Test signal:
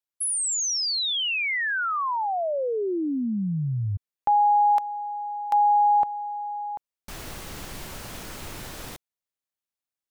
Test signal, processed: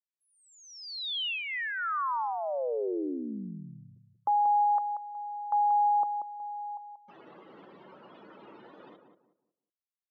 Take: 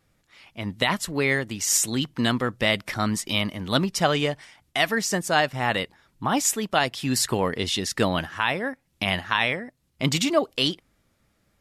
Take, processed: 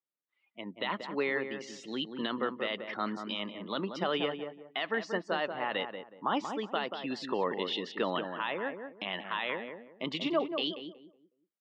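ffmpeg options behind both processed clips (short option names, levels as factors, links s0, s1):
-filter_complex "[0:a]afftdn=nr=26:nf=-39,lowshelf=f=480:g=-4,alimiter=limit=0.2:level=0:latency=1:release=35,highpass=f=220:w=0.5412,highpass=f=220:w=1.3066,equalizer=f=250:t=q:w=4:g=-5,equalizer=f=710:t=q:w=4:g=-5,equalizer=f=1600:t=q:w=4:g=-5,equalizer=f=2300:t=q:w=4:g=-8,lowpass=f=3300:w=0.5412,lowpass=f=3300:w=1.3066,asplit=2[s0][s1];[s1]adelay=184,lowpass=f=1200:p=1,volume=0.501,asplit=2[s2][s3];[s3]adelay=184,lowpass=f=1200:p=1,volume=0.3,asplit=2[s4][s5];[s5]adelay=184,lowpass=f=1200:p=1,volume=0.3,asplit=2[s6][s7];[s7]adelay=184,lowpass=f=1200:p=1,volume=0.3[s8];[s0][s2][s4][s6][s8]amix=inputs=5:normalize=0,volume=0.75"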